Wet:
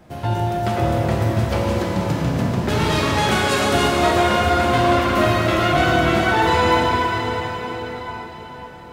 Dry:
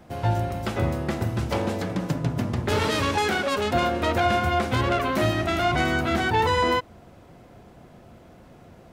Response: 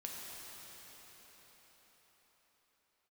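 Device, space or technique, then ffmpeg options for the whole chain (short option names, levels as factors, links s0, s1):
cathedral: -filter_complex "[0:a]asettb=1/sr,asplit=3[s0][s1][s2];[s0]atrim=end=3.314[s3];[s1]atrim=start=3.31:end=3.88,asetpts=PTS-STARTPTS,afade=t=in:d=0.004:c=qsin,afade=t=out:st=0.566:d=0.004:c=qsin,equalizer=f=9200:t=o:w=1.5:g=10[s4];[s2]atrim=start=3.876[s5];[s3][s4]acrossfade=d=0.004:c1=hsin:c2=qsin[s6];[s6][s5]acrossfade=d=0.004:c1=qsin:c2=hsin[s7];[1:a]atrim=start_sample=2205[s8];[s7][s8]afir=irnorm=-1:irlink=0,volume=2.11"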